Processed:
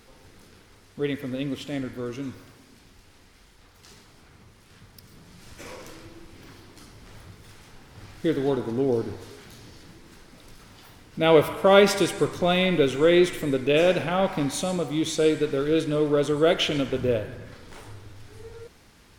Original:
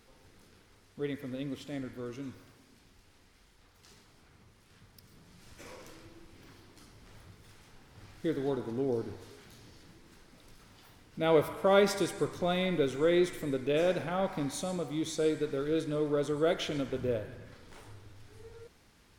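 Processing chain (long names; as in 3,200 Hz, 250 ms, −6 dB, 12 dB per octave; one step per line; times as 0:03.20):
dynamic equaliser 2,800 Hz, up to +8 dB, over −58 dBFS, Q 3.3
level +8 dB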